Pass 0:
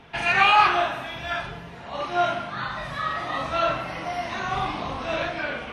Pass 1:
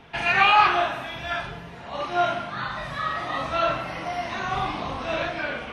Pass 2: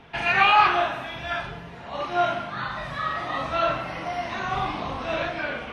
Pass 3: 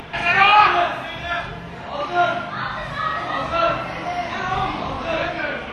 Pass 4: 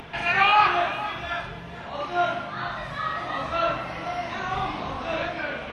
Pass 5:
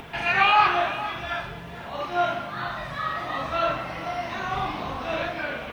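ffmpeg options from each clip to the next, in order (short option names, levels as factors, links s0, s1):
-filter_complex "[0:a]acrossover=split=5800[s0][s1];[s1]acompressor=threshold=0.00251:ratio=4:attack=1:release=60[s2];[s0][s2]amix=inputs=2:normalize=0"
-af "highshelf=f=6500:g=-5.5"
-af "acompressor=mode=upward:threshold=0.0251:ratio=2.5,volume=1.68"
-af "aecho=1:1:458:0.188,volume=0.531"
-af "acrusher=bits=9:mix=0:aa=0.000001"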